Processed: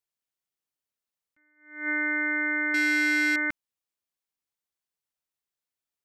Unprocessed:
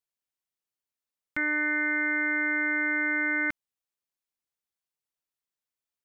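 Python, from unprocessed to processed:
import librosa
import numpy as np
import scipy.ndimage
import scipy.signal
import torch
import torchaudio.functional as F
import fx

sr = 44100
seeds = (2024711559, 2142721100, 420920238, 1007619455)

y = fx.leveller(x, sr, passes=2, at=(2.74, 3.36))
y = fx.attack_slew(y, sr, db_per_s=120.0)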